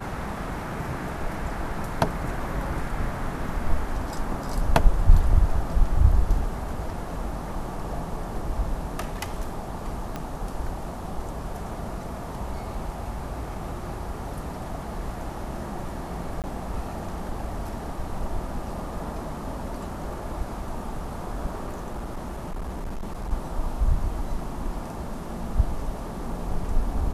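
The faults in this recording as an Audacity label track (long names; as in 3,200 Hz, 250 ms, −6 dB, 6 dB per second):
10.160000	10.160000	click −17 dBFS
16.420000	16.440000	drop-out 18 ms
21.660000	23.320000	clipping −28 dBFS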